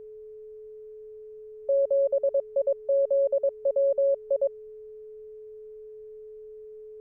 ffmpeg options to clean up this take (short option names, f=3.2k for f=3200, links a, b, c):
-af "bandreject=f=430:w=30,agate=range=-21dB:threshold=-36dB"